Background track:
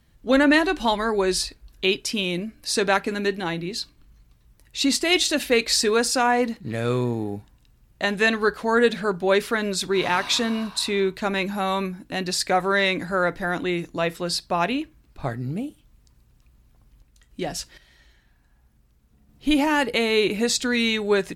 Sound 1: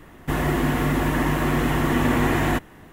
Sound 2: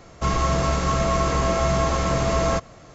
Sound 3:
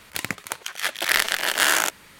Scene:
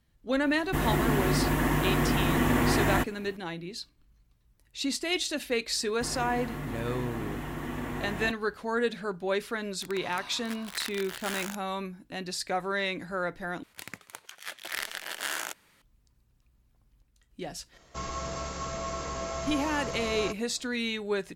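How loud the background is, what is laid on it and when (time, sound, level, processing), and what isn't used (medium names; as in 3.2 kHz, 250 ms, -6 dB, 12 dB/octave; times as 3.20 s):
background track -9.5 dB
0.45 s: add 1 -4.5 dB + treble shelf 6.3 kHz +5 dB
5.73 s: add 1 -15 dB
9.66 s: add 3 -16.5 dB + small samples zeroed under -19.5 dBFS
13.63 s: replace with 3 -14 dB
17.73 s: add 2 -12.5 dB + tone controls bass -5 dB, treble +5 dB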